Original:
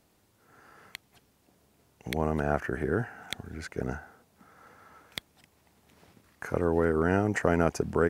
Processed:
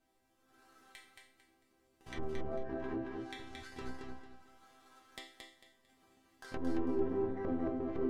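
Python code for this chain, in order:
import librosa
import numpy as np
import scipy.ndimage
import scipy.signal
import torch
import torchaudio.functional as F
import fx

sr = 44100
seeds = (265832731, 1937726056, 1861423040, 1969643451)

p1 = fx.halfwave_hold(x, sr)
p2 = fx.resonator_bank(p1, sr, root=60, chord='major', decay_s=0.47)
p3 = fx.env_lowpass_down(p2, sr, base_hz=660.0, full_db=-41.5)
p4 = p3 + fx.echo_feedback(p3, sr, ms=224, feedback_pct=28, wet_db=-4, dry=0)
y = p4 * 10.0 ** (7.0 / 20.0)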